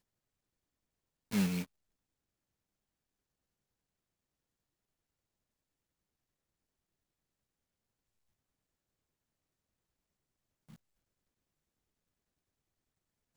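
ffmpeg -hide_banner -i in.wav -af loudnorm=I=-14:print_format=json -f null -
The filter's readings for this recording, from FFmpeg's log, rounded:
"input_i" : "-35.5",
"input_tp" : "-21.6",
"input_lra" : "0.0",
"input_thresh" : "-48.8",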